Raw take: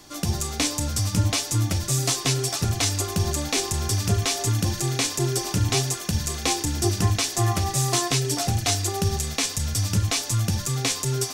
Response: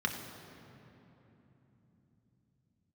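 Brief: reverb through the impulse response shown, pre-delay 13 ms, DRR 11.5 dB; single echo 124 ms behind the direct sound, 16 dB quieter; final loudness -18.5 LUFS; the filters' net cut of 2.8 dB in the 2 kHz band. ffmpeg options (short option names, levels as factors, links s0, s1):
-filter_complex "[0:a]equalizer=f=2000:t=o:g=-3.5,aecho=1:1:124:0.158,asplit=2[s0][s1];[1:a]atrim=start_sample=2205,adelay=13[s2];[s1][s2]afir=irnorm=-1:irlink=0,volume=0.126[s3];[s0][s3]amix=inputs=2:normalize=0,volume=1.78"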